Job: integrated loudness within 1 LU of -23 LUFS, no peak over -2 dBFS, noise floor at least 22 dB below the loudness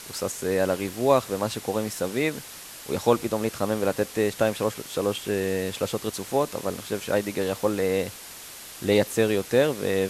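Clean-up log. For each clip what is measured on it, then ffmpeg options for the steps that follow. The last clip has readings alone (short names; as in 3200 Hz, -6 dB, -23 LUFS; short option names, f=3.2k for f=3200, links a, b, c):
noise floor -42 dBFS; noise floor target -48 dBFS; loudness -26.0 LUFS; peak -5.5 dBFS; loudness target -23.0 LUFS
-> -af "afftdn=nr=6:nf=-42"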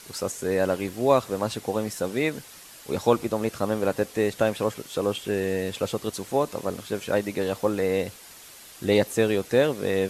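noise floor -47 dBFS; noise floor target -48 dBFS
-> -af "afftdn=nr=6:nf=-47"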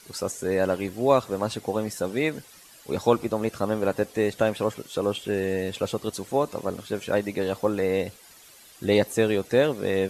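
noise floor -51 dBFS; loudness -26.0 LUFS; peak -5.5 dBFS; loudness target -23.0 LUFS
-> -af "volume=3dB"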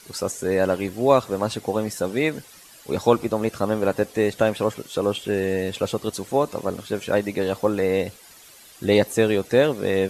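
loudness -23.0 LUFS; peak -2.5 dBFS; noise floor -48 dBFS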